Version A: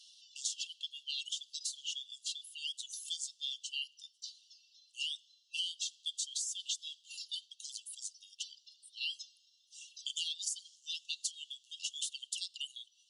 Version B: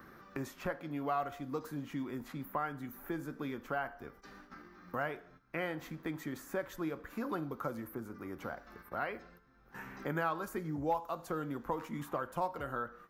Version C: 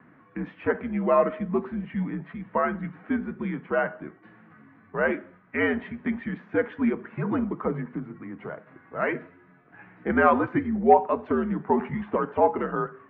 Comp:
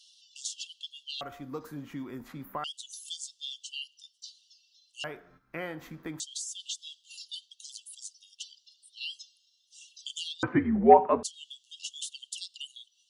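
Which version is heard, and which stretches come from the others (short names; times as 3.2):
A
1.21–2.64 from B
5.04–6.2 from B
10.43–11.23 from C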